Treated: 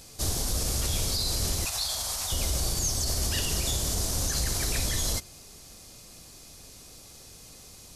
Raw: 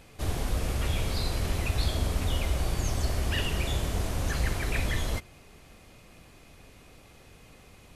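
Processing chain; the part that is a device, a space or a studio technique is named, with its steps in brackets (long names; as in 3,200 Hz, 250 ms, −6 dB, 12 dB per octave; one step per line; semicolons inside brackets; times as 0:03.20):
over-bright horn tweeter (high shelf with overshoot 3,600 Hz +12.5 dB, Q 1.5; brickwall limiter −18 dBFS, peak gain reduction 7 dB)
0:01.65–0:02.32: low shelf with overshoot 530 Hz −14 dB, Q 1.5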